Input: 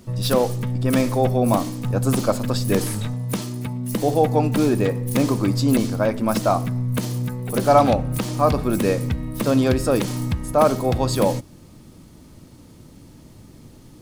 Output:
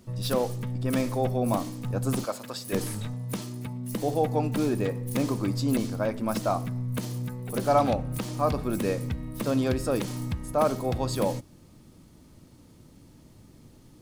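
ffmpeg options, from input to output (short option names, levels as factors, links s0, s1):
-filter_complex "[0:a]asettb=1/sr,asplit=3[s0][s1][s2];[s0]atrim=end=2.244[s3];[s1]atrim=start=2.24:end=2.73,asetpts=PTS-STARTPTS,afade=t=in:d=0.004:c=qsin,afade=t=out:st=0.486:d=0.004:c=qsin,highpass=f=730:p=1[s4];[s2]atrim=start=2.726[s5];[s3][s4]acrossfade=d=0.004:c1=hsin:c2=qsin[s6];[s6][s5]acrossfade=d=0.004:c1=qsin:c2=hsin,volume=0.422"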